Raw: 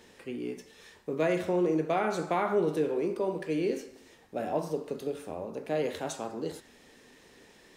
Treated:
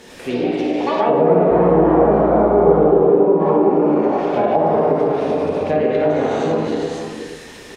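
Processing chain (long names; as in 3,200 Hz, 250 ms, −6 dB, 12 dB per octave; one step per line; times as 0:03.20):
delay with pitch and tempo change per echo 98 ms, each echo +5 semitones, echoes 2
on a send: multi-tap delay 57/477 ms −9/−10 dB
0:01.49–0:02.77: on the sum: hum with harmonics 60 Hz, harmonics 22, −40 dBFS −3 dB per octave
reverb whose tail is shaped and stops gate 420 ms flat, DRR −5.5 dB
in parallel at +3 dB: downward compressor 6 to 1, threshold −29 dBFS, peak gain reduction 15.5 dB
on the sum: treble cut that deepens with the level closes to 760 Hz, closed at −14 dBFS
level +4.5 dB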